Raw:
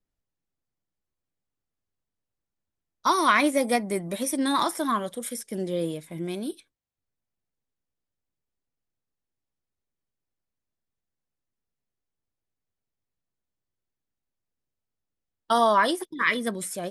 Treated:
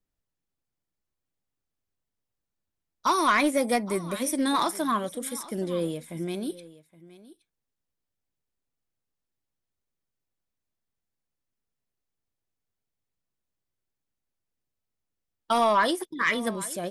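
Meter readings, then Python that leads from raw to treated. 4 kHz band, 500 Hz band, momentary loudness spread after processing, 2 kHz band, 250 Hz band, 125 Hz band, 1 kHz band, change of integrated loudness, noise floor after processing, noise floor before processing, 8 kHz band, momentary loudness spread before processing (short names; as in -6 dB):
-1.0 dB, -1.0 dB, 12 LU, -1.5 dB, -0.5 dB, 0.0 dB, -1.5 dB, -1.0 dB, -85 dBFS, under -85 dBFS, -0.5 dB, 13 LU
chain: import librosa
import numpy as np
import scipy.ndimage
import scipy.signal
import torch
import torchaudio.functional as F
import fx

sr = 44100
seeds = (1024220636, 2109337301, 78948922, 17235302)

y = 10.0 ** (-13.5 / 20.0) * np.tanh(x / 10.0 ** (-13.5 / 20.0))
y = y + 10.0 ** (-19.0 / 20.0) * np.pad(y, (int(820 * sr / 1000.0), 0))[:len(y)]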